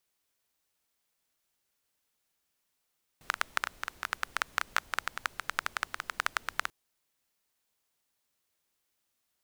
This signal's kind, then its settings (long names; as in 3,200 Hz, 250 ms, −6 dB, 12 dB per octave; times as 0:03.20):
rain-like ticks over hiss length 3.49 s, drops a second 11, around 1,400 Hz, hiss −20.5 dB